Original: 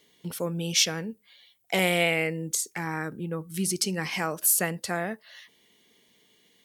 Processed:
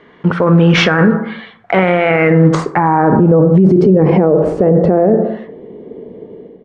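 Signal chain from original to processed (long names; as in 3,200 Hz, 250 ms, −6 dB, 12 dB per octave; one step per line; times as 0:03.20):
one scale factor per block 5 bits
high-shelf EQ 6,500 Hz −11.5 dB
automatic gain control gain up to 11 dB
low-pass filter sweep 1,400 Hz → 470 Hz, 0:02.32–0:03.85
on a send at −11.5 dB: convolution reverb RT60 0.65 s, pre-delay 22 ms
on the sum: downsampling to 22,050 Hz
boost into a limiter +22.5 dB
level −1 dB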